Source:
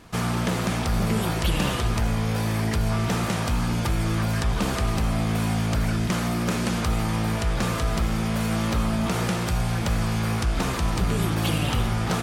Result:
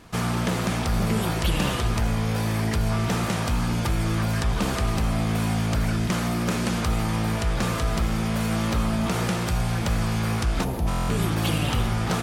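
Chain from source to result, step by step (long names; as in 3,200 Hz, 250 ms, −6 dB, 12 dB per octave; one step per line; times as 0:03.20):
gain on a spectral selection 0:10.64–0:10.87, 960–9,800 Hz −12 dB
buffer that repeats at 0:10.89, samples 1,024, times 8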